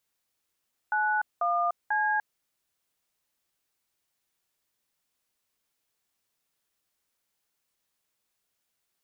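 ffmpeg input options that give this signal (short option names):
-f lavfi -i "aevalsrc='0.0501*clip(min(mod(t,0.492),0.296-mod(t,0.492))/0.002,0,1)*(eq(floor(t/0.492),0)*(sin(2*PI*852*mod(t,0.492))+sin(2*PI*1477*mod(t,0.492)))+eq(floor(t/0.492),1)*(sin(2*PI*697*mod(t,0.492))+sin(2*PI*1209*mod(t,0.492)))+eq(floor(t/0.492),2)*(sin(2*PI*852*mod(t,0.492))+sin(2*PI*1633*mod(t,0.492))))':d=1.476:s=44100"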